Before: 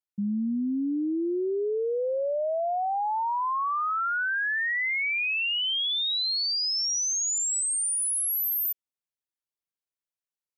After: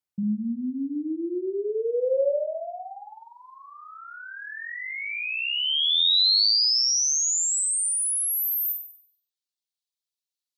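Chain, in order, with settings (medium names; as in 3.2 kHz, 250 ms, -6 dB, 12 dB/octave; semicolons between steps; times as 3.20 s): high-pass sweep 95 Hz -> 3.9 kHz, 1.26–3.35 s; in parallel at -3 dB: compression, threshold -36 dBFS, peak gain reduction 15.5 dB; on the sum: reverb removal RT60 0.96 s; flutter echo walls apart 8.2 m, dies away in 0.58 s; trim -2.5 dB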